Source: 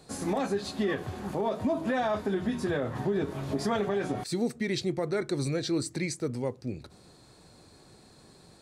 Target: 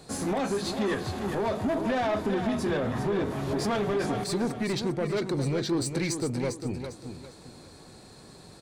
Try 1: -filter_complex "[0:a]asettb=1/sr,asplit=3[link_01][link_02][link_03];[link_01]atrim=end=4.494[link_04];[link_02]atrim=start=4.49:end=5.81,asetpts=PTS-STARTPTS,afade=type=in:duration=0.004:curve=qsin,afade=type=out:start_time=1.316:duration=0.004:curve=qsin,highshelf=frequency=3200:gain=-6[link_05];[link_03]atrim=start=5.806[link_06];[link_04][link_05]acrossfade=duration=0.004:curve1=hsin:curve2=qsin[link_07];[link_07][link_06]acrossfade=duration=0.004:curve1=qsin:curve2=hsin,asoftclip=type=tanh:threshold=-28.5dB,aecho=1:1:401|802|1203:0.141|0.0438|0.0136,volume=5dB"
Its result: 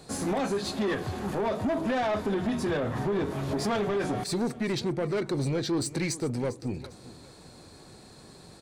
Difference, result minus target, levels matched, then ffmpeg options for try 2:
echo-to-direct −9 dB
-filter_complex "[0:a]asettb=1/sr,asplit=3[link_01][link_02][link_03];[link_01]atrim=end=4.494[link_04];[link_02]atrim=start=4.49:end=5.81,asetpts=PTS-STARTPTS,afade=type=in:duration=0.004:curve=qsin,afade=type=out:start_time=1.316:duration=0.004:curve=qsin,highshelf=frequency=3200:gain=-6[link_05];[link_03]atrim=start=5.806[link_06];[link_04][link_05]acrossfade=duration=0.004:curve1=hsin:curve2=qsin[link_07];[link_07][link_06]acrossfade=duration=0.004:curve1=qsin:curve2=hsin,asoftclip=type=tanh:threshold=-28.5dB,aecho=1:1:401|802|1203|1604:0.398|0.123|0.0383|0.0119,volume=5dB"

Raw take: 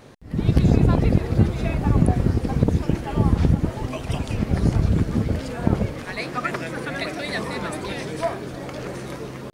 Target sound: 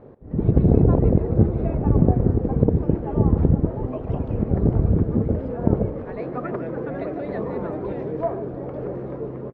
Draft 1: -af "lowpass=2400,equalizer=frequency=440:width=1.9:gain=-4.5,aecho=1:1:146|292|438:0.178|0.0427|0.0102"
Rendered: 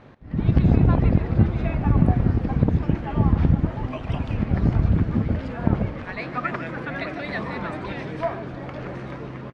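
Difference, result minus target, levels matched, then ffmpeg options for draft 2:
2,000 Hz band +12.5 dB; 500 Hz band −5.5 dB
-af "lowpass=830,equalizer=frequency=440:width=1.9:gain=5.5,aecho=1:1:146|292|438:0.178|0.0427|0.0102"

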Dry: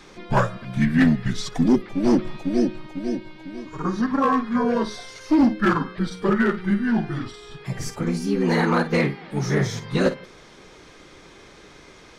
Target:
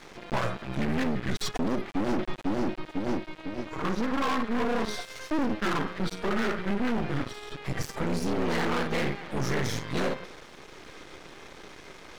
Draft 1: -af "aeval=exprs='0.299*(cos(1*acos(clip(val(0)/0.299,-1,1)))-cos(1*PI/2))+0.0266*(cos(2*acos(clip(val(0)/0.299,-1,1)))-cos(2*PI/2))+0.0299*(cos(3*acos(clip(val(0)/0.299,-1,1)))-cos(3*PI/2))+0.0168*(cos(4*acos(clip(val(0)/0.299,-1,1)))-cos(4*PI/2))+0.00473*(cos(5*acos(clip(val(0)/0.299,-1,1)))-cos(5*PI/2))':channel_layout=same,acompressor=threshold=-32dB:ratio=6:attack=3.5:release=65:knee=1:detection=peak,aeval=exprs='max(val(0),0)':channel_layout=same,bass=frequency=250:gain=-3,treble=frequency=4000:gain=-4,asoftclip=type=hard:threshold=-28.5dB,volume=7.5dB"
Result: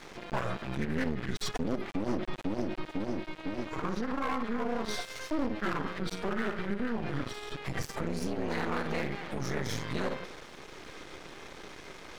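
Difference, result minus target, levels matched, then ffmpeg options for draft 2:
downward compressor: peak gain reduction +9 dB
-af "aeval=exprs='0.299*(cos(1*acos(clip(val(0)/0.299,-1,1)))-cos(1*PI/2))+0.0266*(cos(2*acos(clip(val(0)/0.299,-1,1)))-cos(2*PI/2))+0.0299*(cos(3*acos(clip(val(0)/0.299,-1,1)))-cos(3*PI/2))+0.0168*(cos(4*acos(clip(val(0)/0.299,-1,1)))-cos(4*PI/2))+0.00473*(cos(5*acos(clip(val(0)/0.299,-1,1)))-cos(5*PI/2))':channel_layout=same,acompressor=threshold=-21dB:ratio=6:attack=3.5:release=65:knee=1:detection=peak,aeval=exprs='max(val(0),0)':channel_layout=same,bass=frequency=250:gain=-3,treble=frequency=4000:gain=-4,asoftclip=type=hard:threshold=-28.5dB,volume=7.5dB"

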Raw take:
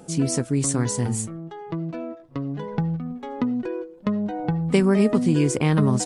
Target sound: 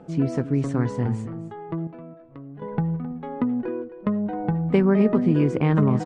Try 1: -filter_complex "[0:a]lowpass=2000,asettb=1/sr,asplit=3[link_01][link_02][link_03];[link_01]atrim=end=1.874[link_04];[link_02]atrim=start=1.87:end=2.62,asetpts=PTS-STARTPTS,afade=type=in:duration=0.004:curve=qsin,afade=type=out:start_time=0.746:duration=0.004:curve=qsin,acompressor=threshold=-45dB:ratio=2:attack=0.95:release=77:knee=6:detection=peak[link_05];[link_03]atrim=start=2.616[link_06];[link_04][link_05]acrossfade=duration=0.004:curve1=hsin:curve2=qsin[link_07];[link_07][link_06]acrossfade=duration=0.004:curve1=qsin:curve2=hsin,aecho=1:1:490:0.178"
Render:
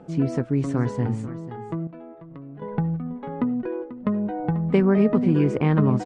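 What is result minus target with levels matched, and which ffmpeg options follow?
echo 226 ms late
-filter_complex "[0:a]lowpass=2000,asettb=1/sr,asplit=3[link_01][link_02][link_03];[link_01]atrim=end=1.874[link_04];[link_02]atrim=start=1.87:end=2.62,asetpts=PTS-STARTPTS,afade=type=in:duration=0.004:curve=qsin,afade=type=out:start_time=0.746:duration=0.004:curve=qsin,acompressor=threshold=-45dB:ratio=2:attack=0.95:release=77:knee=6:detection=peak[link_05];[link_03]atrim=start=2.616[link_06];[link_04][link_05]acrossfade=duration=0.004:curve1=hsin:curve2=qsin[link_07];[link_07][link_06]acrossfade=duration=0.004:curve1=qsin:curve2=hsin,aecho=1:1:264:0.178"

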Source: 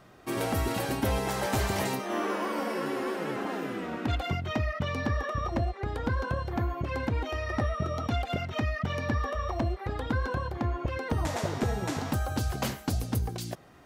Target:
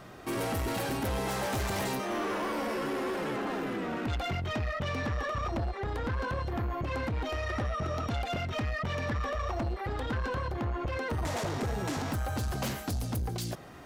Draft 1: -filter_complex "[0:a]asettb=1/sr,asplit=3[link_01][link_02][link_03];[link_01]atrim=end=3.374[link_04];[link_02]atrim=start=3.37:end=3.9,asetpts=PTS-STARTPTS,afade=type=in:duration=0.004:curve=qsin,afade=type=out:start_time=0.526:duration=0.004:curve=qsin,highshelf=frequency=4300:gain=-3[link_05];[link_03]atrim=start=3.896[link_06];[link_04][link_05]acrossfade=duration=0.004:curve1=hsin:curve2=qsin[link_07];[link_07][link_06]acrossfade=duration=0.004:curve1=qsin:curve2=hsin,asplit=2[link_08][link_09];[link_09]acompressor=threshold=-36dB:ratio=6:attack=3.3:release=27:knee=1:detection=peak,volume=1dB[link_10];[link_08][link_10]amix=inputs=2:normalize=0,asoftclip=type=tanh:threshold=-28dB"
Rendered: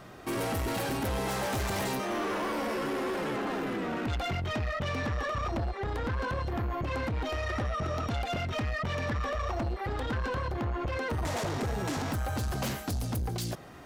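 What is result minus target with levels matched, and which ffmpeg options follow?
downward compressor: peak gain reduction −5 dB
-filter_complex "[0:a]asettb=1/sr,asplit=3[link_01][link_02][link_03];[link_01]atrim=end=3.374[link_04];[link_02]atrim=start=3.37:end=3.9,asetpts=PTS-STARTPTS,afade=type=in:duration=0.004:curve=qsin,afade=type=out:start_time=0.526:duration=0.004:curve=qsin,highshelf=frequency=4300:gain=-3[link_05];[link_03]atrim=start=3.896[link_06];[link_04][link_05]acrossfade=duration=0.004:curve1=hsin:curve2=qsin[link_07];[link_07][link_06]acrossfade=duration=0.004:curve1=qsin:curve2=hsin,asplit=2[link_08][link_09];[link_09]acompressor=threshold=-42dB:ratio=6:attack=3.3:release=27:knee=1:detection=peak,volume=1dB[link_10];[link_08][link_10]amix=inputs=2:normalize=0,asoftclip=type=tanh:threshold=-28dB"

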